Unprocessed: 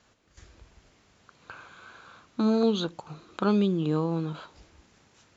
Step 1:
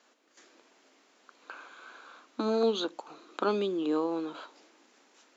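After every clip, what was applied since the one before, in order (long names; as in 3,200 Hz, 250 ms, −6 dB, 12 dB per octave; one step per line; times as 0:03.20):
Chebyshev high-pass filter 260 Hz, order 4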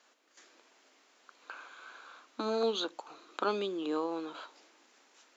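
low-shelf EQ 400 Hz −9 dB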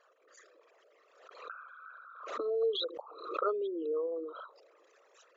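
spectral envelope exaggerated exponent 3
background raised ahead of every attack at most 73 dB per second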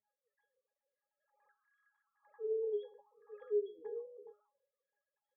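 three sine waves on the formant tracks
resonances in every octave G#, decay 0.26 s
level +6.5 dB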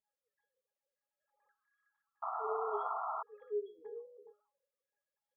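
sound drawn into the spectrogram noise, 0:02.22–0:03.23, 630–1,400 Hz −35 dBFS
level −3.5 dB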